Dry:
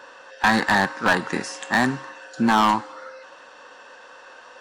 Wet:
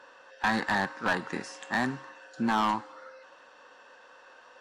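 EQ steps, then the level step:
high-shelf EQ 7,800 Hz −6.5 dB
−8.5 dB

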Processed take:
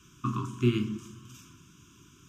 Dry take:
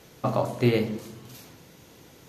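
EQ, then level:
Chebyshev band-stop filter 400–1,000 Hz, order 5
dynamic equaliser 310 Hz, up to +3 dB, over −33 dBFS, Q 1.2
phaser with its sweep stopped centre 2,900 Hz, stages 8
−1.0 dB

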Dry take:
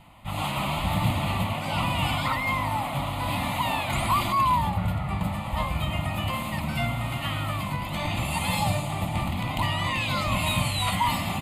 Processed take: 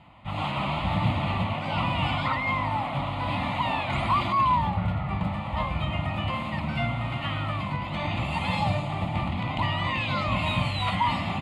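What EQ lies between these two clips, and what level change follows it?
high-pass filter 52 Hz
low-pass filter 3,500 Hz 12 dB per octave
0.0 dB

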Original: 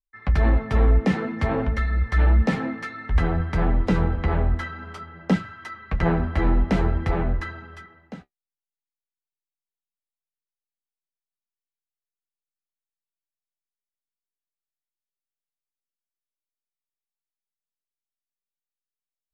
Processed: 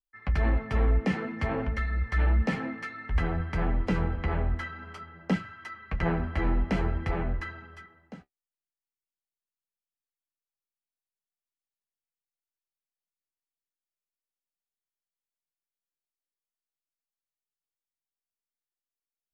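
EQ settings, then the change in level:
notch filter 3,700 Hz, Q 8.7
dynamic equaliser 2,500 Hz, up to +4 dB, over −47 dBFS, Q 1
−6.5 dB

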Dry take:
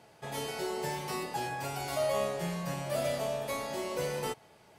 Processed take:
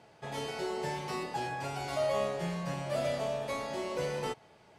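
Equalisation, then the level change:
high-frequency loss of the air 55 metres
0.0 dB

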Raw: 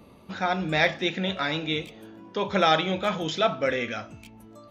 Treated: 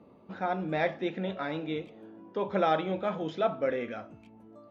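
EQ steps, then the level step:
resonant band-pass 420 Hz, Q 0.54
−2.5 dB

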